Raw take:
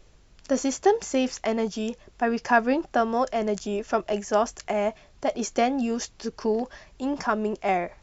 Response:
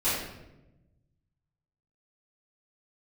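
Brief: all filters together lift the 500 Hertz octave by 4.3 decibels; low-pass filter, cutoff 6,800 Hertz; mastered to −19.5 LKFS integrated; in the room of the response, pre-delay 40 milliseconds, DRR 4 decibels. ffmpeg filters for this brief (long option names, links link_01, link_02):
-filter_complex "[0:a]lowpass=6800,equalizer=frequency=500:width_type=o:gain=5.5,asplit=2[link_01][link_02];[1:a]atrim=start_sample=2205,adelay=40[link_03];[link_02][link_03]afir=irnorm=-1:irlink=0,volume=-15.5dB[link_04];[link_01][link_04]amix=inputs=2:normalize=0,volume=2dB"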